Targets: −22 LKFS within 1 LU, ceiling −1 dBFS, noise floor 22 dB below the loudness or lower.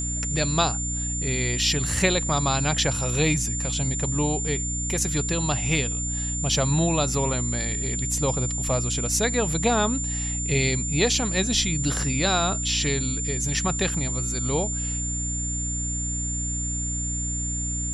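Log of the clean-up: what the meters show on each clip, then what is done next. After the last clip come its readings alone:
mains hum 60 Hz; hum harmonics up to 300 Hz; level of the hum −28 dBFS; interfering tone 7,200 Hz; level of the tone −28 dBFS; integrated loudness −24.0 LKFS; sample peak −7.5 dBFS; target loudness −22.0 LKFS
→ mains-hum notches 60/120/180/240/300 Hz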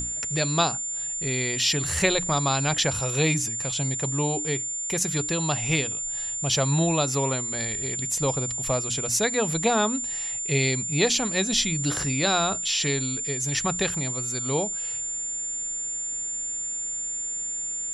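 mains hum none found; interfering tone 7,200 Hz; level of the tone −28 dBFS
→ notch filter 7,200 Hz, Q 30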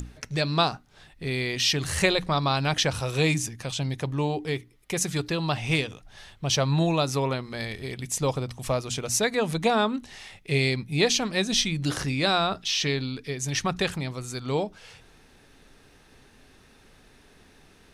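interfering tone none found; integrated loudness −26.0 LKFS; sample peak −8.0 dBFS; target loudness −22.0 LKFS
→ level +4 dB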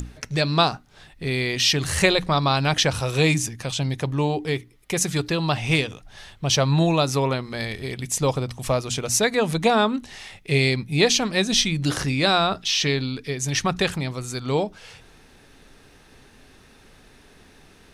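integrated loudness −22.5 LKFS; sample peak −4.0 dBFS; background noise floor −52 dBFS

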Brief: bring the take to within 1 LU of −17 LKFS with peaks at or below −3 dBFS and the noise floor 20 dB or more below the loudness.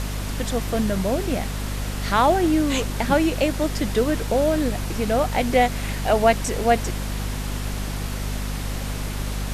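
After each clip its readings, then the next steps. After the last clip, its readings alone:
mains hum 50 Hz; hum harmonics up to 250 Hz; level of the hum −25 dBFS; background noise floor −28 dBFS; target noise floor −43 dBFS; integrated loudness −23.0 LKFS; sample peak −5.0 dBFS; target loudness −17.0 LKFS
→ mains-hum notches 50/100/150/200/250 Hz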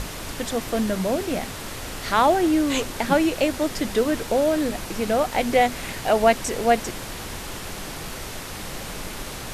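mains hum none found; background noise floor −34 dBFS; target noise floor −44 dBFS
→ noise reduction from a noise print 10 dB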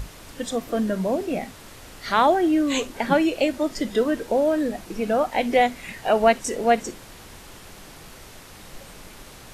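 background noise floor −44 dBFS; integrated loudness −22.5 LKFS; sample peak −6.0 dBFS; target loudness −17.0 LKFS
→ level +5.5 dB
brickwall limiter −3 dBFS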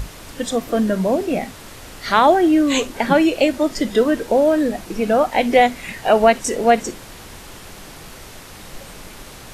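integrated loudness −17.5 LKFS; sample peak −3.0 dBFS; background noise floor −39 dBFS

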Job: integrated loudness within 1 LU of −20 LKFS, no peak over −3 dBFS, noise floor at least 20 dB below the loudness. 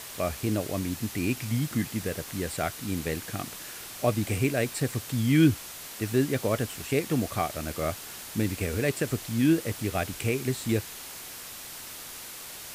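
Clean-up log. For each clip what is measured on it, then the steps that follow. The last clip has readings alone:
background noise floor −42 dBFS; target noise floor −50 dBFS; integrated loudness −29.5 LKFS; sample peak −9.5 dBFS; target loudness −20.0 LKFS
→ broadband denoise 8 dB, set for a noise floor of −42 dBFS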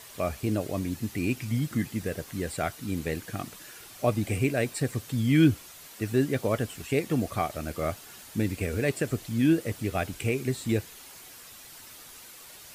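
background noise floor −48 dBFS; target noise floor −49 dBFS
→ broadband denoise 6 dB, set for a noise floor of −48 dBFS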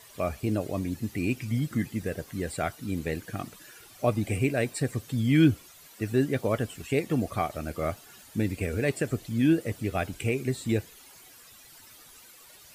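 background noise floor −52 dBFS; integrated loudness −29.0 LKFS; sample peak −10.0 dBFS; target loudness −20.0 LKFS
→ level +9 dB
brickwall limiter −3 dBFS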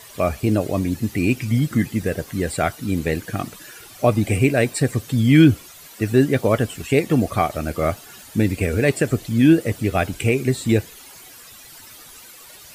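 integrated loudness −20.0 LKFS; sample peak −3.0 dBFS; background noise floor −43 dBFS

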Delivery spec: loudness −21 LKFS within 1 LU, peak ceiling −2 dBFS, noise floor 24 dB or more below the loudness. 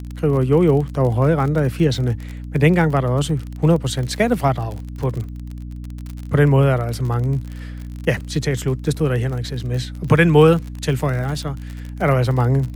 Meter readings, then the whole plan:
crackle rate 40 per second; mains hum 60 Hz; hum harmonics up to 300 Hz; level of the hum −28 dBFS; integrated loudness −19.0 LKFS; sample peak −1.5 dBFS; target loudness −21.0 LKFS
→ click removal
mains-hum notches 60/120/180/240/300 Hz
level −2 dB

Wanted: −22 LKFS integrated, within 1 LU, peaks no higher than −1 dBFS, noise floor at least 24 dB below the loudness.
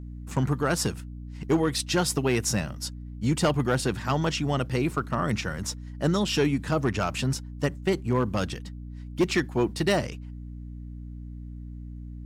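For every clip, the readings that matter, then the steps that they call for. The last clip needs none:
share of clipped samples 0.5%; peaks flattened at −16.0 dBFS; mains hum 60 Hz; hum harmonics up to 300 Hz; level of the hum −36 dBFS; integrated loudness −27.0 LKFS; sample peak −16.0 dBFS; target loudness −22.0 LKFS
→ clipped peaks rebuilt −16 dBFS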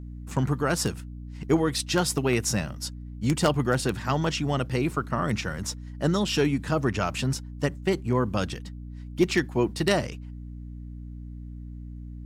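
share of clipped samples 0.0%; mains hum 60 Hz; hum harmonics up to 300 Hz; level of the hum −36 dBFS
→ mains-hum notches 60/120/180/240/300 Hz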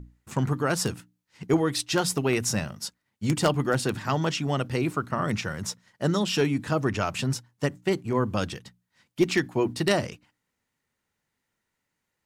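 mains hum none found; integrated loudness −27.0 LKFS; sample peak −7.5 dBFS; target loudness −22.0 LKFS
→ level +5 dB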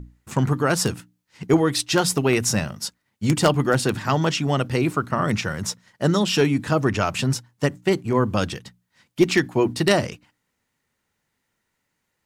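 integrated loudness −22.0 LKFS; sample peak −2.5 dBFS; background noise floor −76 dBFS

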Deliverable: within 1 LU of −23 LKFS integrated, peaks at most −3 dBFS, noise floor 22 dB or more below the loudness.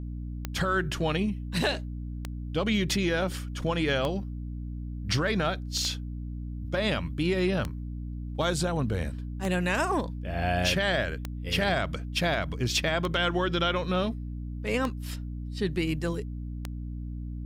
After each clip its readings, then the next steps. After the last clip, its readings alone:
number of clicks 10; mains hum 60 Hz; hum harmonics up to 300 Hz; level of the hum −33 dBFS; integrated loudness −29.5 LKFS; sample peak −11.5 dBFS; target loudness −23.0 LKFS
→ click removal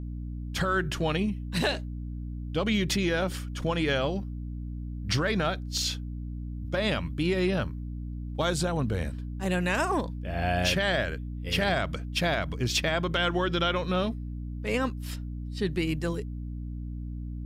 number of clicks 0; mains hum 60 Hz; hum harmonics up to 300 Hz; level of the hum −33 dBFS
→ hum removal 60 Hz, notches 5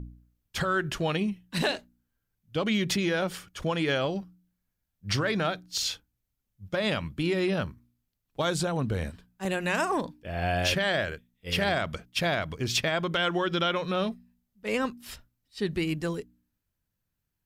mains hum none found; integrated loudness −29.0 LKFS; sample peak −13.5 dBFS; target loudness −23.0 LKFS
→ level +6 dB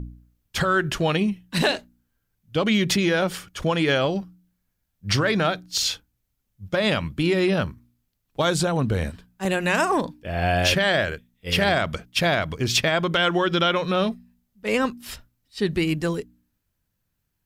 integrated loudness −23.0 LKFS; sample peak −7.5 dBFS; background noise floor −76 dBFS

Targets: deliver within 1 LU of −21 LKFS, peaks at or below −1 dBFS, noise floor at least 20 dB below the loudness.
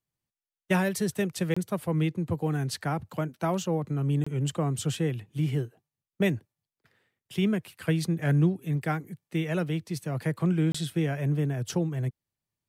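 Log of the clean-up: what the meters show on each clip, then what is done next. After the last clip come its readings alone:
number of dropouts 3; longest dropout 25 ms; integrated loudness −29.0 LKFS; sample peak −12.5 dBFS; target loudness −21.0 LKFS
→ repair the gap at 0:01.54/0:04.24/0:10.72, 25 ms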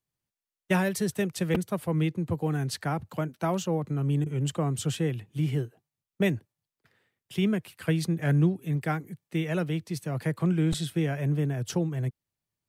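number of dropouts 0; integrated loudness −29.0 LKFS; sample peak −12.5 dBFS; target loudness −21.0 LKFS
→ level +8 dB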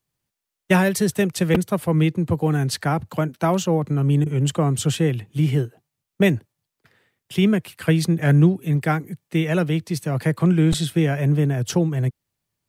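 integrated loudness −21.0 LKFS; sample peak −4.5 dBFS; background noise floor −84 dBFS

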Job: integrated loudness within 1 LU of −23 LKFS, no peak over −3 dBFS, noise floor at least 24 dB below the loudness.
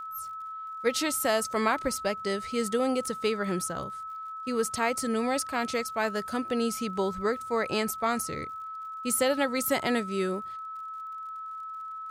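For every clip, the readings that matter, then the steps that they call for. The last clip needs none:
crackle rate 53 per second; interfering tone 1,300 Hz; level of the tone −36 dBFS; integrated loudness −30.0 LKFS; sample peak −13.0 dBFS; target loudness −23.0 LKFS
→ click removal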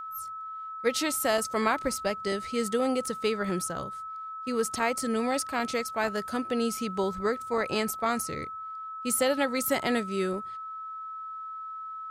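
crackle rate 0.41 per second; interfering tone 1,300 Hz; level of the tone −36 dBFS
→ notch filter 1,300 Hz, Q 30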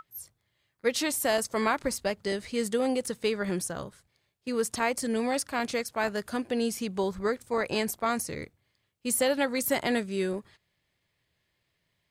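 interfering tone none found; integrated loudness −29.5 LKFS; sample peak −13.0 dBFS; target loudness −23.0 LKFS
→ level +6.5 dB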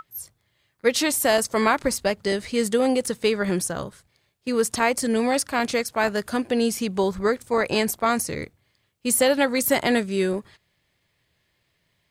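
integrated loudness −23.0 LKFS; sample peak −6.5 dBFS; background noise floor −71 dBFS

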